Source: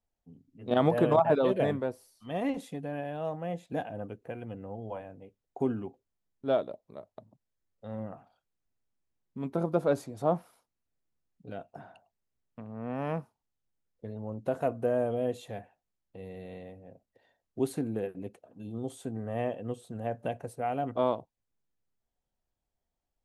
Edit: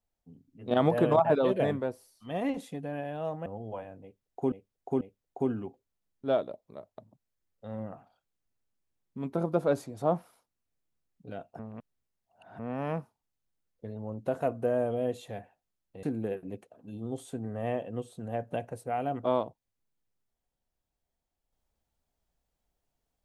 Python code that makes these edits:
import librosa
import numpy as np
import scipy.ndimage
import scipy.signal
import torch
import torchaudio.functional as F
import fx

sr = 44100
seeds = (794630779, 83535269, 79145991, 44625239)

y = fx.edit(x, sr, fx.cut(start_s=3.46, length_s=1.18),
    fx.repeat(start_s=5.21, length_s=0.49, count=3),
    fx.reverse_span(start_s=11.79, length_s=1.0),
    fx.cut(start_s=16.23, length_s=1.52), tone=tone)